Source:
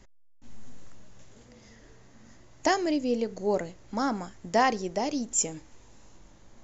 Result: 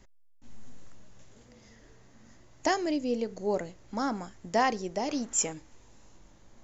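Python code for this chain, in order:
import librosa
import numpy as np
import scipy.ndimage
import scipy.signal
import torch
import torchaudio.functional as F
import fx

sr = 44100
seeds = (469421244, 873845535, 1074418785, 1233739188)

y = fx.peak_eq(x, sr, hz=1400.0, db=11.0, octaves=2.0, at=(5.08, 5.52), fade=0.02)
y = y * librosa.db_to_amplitude(-2.5)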